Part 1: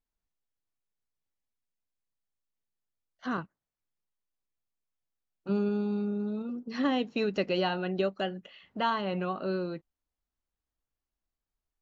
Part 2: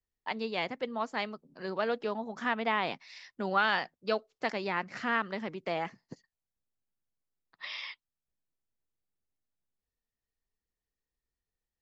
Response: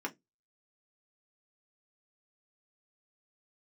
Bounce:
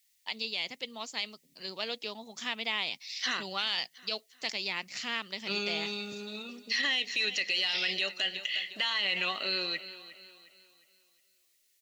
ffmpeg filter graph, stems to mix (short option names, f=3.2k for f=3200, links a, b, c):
-filter_complex "[0:a]highpass=f=1k:p=1,equalizer=f=1.9k:t=o:w=0.42:g=15,acompressor=threshold=-32dB:ratio=6,volume=1.5dB,asplit=2[a][b];[b]volume=-16.5dB[c];[1:a]volume=-9dB[d];[c]aecho=0:1:358|716|1074|1432|1790|2148:1|0.4|0.16|0.064|0.0256|0.0102[e];[a][d][e]amix=inputs=3:normalize=0,aexciter=amount=5.7:drive=8.7:freq=2.3k,alimiter=limit=-20dB:level=0:latency=1:release=42"